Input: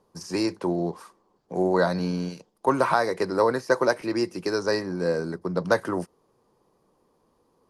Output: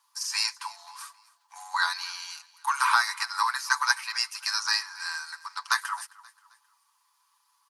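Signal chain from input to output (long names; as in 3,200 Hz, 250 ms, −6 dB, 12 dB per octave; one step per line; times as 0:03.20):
Butterworth high-pass 900 Hz 72 dB per octave
high-shelf EQ 2,100 Hz +10 dB
comb filter 7 ms
repeating echo 265 ms, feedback 41%, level −21 dB
0:04.32–0:05.55: one half of a high-frequency compander encoder only
level −1 dB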